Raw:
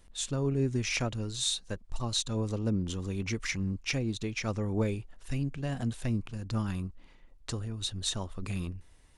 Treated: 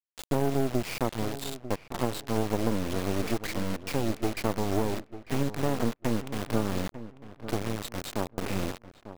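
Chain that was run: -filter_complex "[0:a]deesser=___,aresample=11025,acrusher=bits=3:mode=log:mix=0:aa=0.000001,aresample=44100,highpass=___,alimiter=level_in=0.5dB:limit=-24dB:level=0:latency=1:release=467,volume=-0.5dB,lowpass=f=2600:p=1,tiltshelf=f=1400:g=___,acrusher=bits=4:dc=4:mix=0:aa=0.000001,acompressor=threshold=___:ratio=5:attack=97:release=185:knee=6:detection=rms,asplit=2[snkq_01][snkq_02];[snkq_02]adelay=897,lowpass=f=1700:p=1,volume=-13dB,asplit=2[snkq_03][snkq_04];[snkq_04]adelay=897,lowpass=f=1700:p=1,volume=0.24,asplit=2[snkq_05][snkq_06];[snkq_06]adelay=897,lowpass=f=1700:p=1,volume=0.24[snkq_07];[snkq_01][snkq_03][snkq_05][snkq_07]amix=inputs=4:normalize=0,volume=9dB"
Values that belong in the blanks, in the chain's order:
0.2, 280, 8.5, -34dB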